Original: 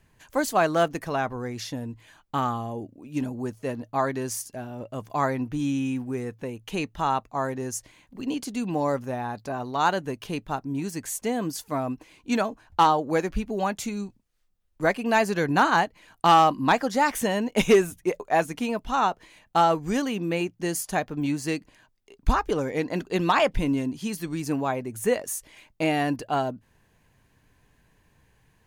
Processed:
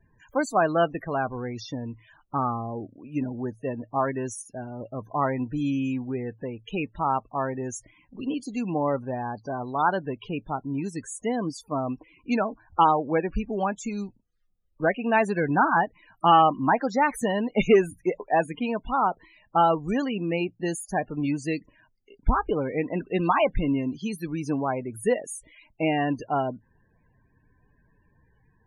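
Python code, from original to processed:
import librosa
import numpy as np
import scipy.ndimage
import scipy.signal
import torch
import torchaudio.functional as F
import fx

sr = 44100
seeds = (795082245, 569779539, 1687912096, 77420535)

y = fx.spec_topn(x, sr, count=32)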